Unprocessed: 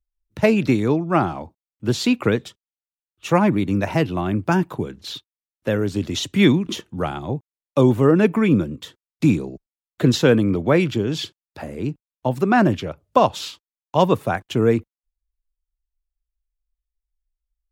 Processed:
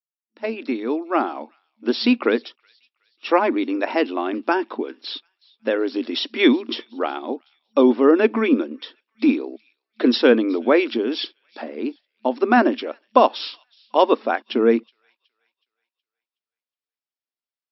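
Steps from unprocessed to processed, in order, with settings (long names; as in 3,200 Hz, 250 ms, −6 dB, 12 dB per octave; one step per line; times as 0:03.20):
fade in at the beginning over 1.60 s
delay with a high-pass on its return 370 ms, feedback 38%, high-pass 2,800 Hz, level −23.5 dB
brick-wall band-pass 220–5,600 Hz
level +1.5 dB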